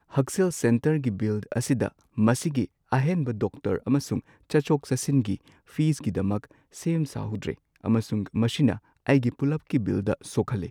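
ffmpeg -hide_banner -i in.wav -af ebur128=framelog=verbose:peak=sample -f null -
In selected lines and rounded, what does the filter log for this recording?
Integrated loudness:
  I:         -26.6 LUFS
  Threshold: -36.6 LUFS
Loudness range:
  LRA:         2.4 LU
  Threshold: -46.9 LUFS
  LRA low:   -28.2 LUFS
  LRA high:  -25.9 LUFS
Sample peak:
  Peak:       -8.1 dBFS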